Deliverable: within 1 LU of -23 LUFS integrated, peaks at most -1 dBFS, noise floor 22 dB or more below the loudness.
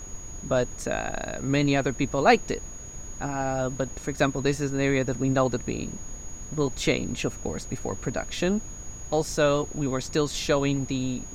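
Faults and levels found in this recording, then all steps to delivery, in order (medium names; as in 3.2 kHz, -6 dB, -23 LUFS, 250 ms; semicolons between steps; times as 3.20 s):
steady tone 6.7 kHz; tone level -41 dBFS; noise floor -40 dBFS; noise floor target -49 dBFS; loudness -27.0 LUFS; peak level -5.5 dBFS; loudness target -23.0 LUFS
-> band-stop 6.7 kHz, Q 30; noise print and reduce 9 dB; trim +4 dB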